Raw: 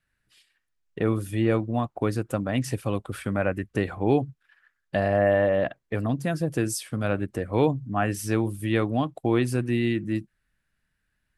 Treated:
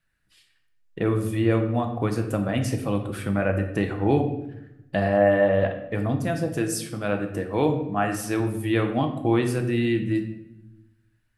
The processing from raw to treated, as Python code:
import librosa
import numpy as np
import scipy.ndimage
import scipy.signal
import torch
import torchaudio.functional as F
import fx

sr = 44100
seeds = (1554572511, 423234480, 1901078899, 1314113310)

y = fx.low_shelf(x, sr, hz=140.0, db=-10.0, at=(6.22, 8.4))
y = fx.room_shoebox(y, sr, seeds[0], volume_m3=290.0, walls='mixed', distance_m=0.69)